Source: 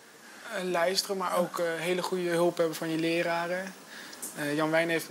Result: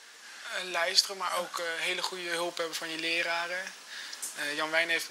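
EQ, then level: band-pass 3800 Hz, Q 0.64; +6.0 dB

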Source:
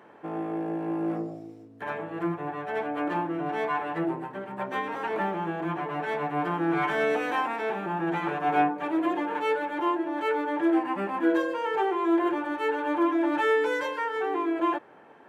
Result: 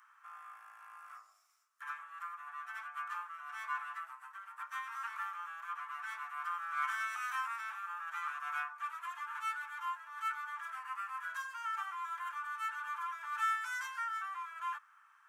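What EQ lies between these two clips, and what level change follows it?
Chebyshev high-pass 1200 Hz, order 5; band shelf 2700 Hz -11.5 dB; +2.0 dB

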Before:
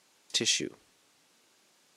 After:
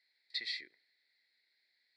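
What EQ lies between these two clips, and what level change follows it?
double band-pass 2900 Hz, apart 1.1 oct; air absorption 57 m; fixed phaser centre 2800 Hz, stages 4; +3.0 dB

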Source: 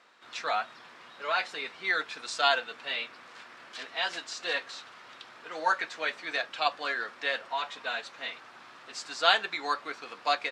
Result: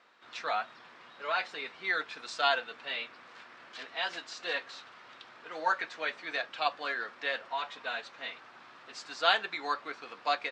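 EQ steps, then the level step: air absorption 71 m; -2.0 dB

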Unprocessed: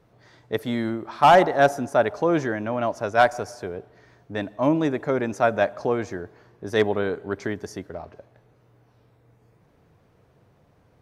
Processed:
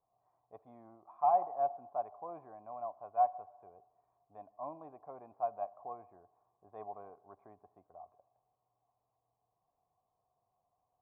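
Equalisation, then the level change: vocal tract filter a; low shelf 100 Hz +8 dB; -8.0 dB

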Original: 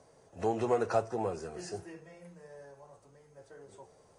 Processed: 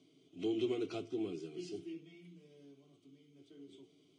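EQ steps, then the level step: vowel filter i; bell 3300 Hz +8.5 dB 0.57 oct; fixed phaser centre 350 Hz, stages 8; +15.0 dB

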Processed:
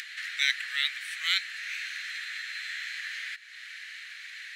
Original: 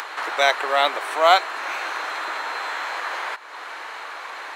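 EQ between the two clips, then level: elliptic high-pass 1800 Hz, stop band 50 dB; high shelf 11000 Hz -5 dB; -2.5 dB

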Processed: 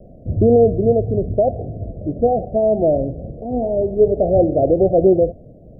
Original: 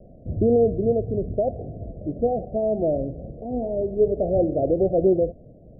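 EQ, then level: dynamic EQ 100 Hz, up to +4 dB, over -44 dBFS, Q 2.6; dynamic EQ 810 Hz, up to +4 dB, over -35 dBFS, Q 1.6; +5.0 dB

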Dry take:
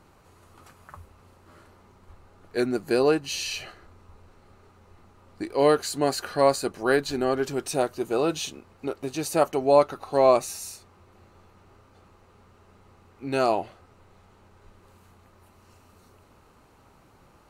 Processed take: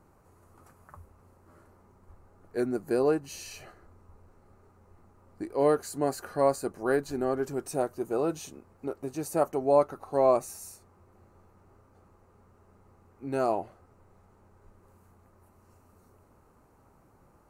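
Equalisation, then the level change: bell 3400 Hz -14.5 dB 1.4 oct; -3.5 dB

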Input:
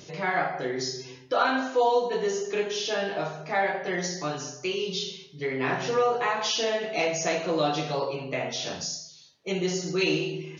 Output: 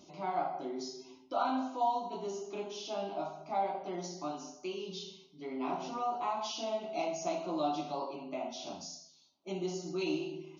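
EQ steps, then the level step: low shelf 100 Hz -7.5 dB; high shelf 2500 Hz -10 dB; fixed phaser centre 470 Hz, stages 6; -3.5 dB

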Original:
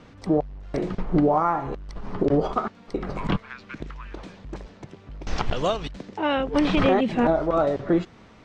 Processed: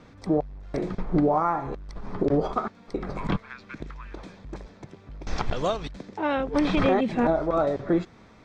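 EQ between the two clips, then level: notch 2900 Hz, Q 8.2; -2.0 dB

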